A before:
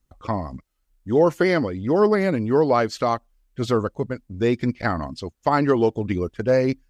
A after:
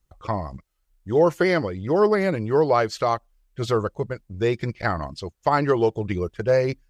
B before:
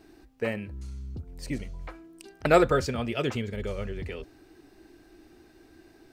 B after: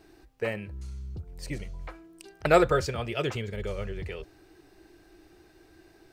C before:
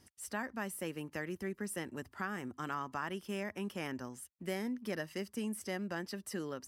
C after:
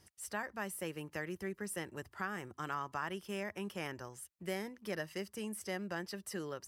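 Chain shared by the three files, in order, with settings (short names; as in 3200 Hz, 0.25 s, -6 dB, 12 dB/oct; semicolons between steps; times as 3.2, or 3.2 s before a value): bell 250 Hz -14 dB 0.28 oct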